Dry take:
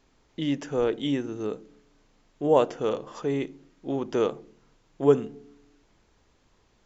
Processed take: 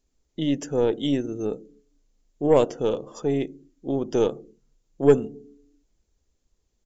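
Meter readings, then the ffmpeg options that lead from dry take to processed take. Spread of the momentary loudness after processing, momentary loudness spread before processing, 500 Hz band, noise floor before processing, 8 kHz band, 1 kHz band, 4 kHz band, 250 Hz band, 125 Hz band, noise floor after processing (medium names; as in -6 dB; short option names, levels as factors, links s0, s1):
17 LU, 17 LU, +3.0 dB, -65 dBFS, no reading, -1.0 dB, +2.0 dB, +3.5 dB, +4.0 dB, -73 dBFS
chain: -af "afftdn=nr=16:nf=-48,firequalizer=gain_entry='entry(480,0);entry(940,-8);entry(6900,9)':delay=0.05:min_phase=1,aeval=exprs='0.447*(cos(1*acos(clip(val(0)/0.447,-1,1)))-cos(1*PI/2))+0.0251*(cos(6*acos(clip(val(0)/0.447,-1,1)))-cos(6*PI/2))':c=same,volume=1.41"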